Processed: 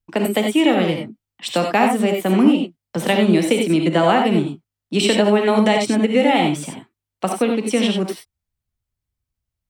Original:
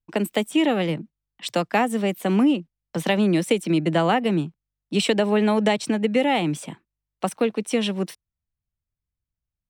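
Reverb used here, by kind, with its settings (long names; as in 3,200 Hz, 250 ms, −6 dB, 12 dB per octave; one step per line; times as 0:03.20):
reverb whose tail is shaped and stops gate 110 ms rising, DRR 2.5 dB
level +3 dB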